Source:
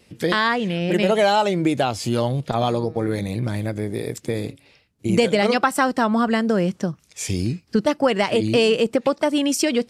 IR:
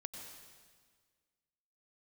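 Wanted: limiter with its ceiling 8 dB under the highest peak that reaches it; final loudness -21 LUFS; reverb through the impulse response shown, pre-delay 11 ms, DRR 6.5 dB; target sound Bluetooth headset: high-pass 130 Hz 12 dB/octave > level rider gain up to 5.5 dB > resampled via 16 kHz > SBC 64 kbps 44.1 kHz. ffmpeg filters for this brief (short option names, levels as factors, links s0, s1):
-filter_complex "[0:a]alimiter=limit=0.188:level=0:latency=1,asplit=2[s0][s1];[1:a]atrim=start_sample=2205,adelay=11[s2];[s1][s2]afir=irnorm=-1:irlink=0,volume=0.668[s3];[s0][s3]amix=inputs=2:normalize=0,highpass=130,dynaudnorm=m=1.88,aresample=16000,aresample=44100,volume=1.5" -ar 44100 -c:a sbc -b:a 64k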